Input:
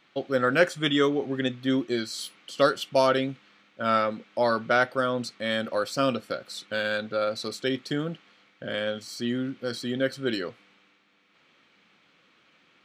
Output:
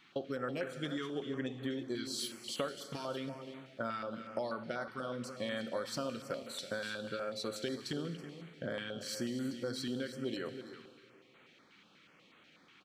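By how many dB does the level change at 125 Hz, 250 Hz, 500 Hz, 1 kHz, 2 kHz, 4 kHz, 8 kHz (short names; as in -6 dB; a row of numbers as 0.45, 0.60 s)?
-9.0, -10.5, -13.0, -15.5, -14.5, -10.5, -4.5 dB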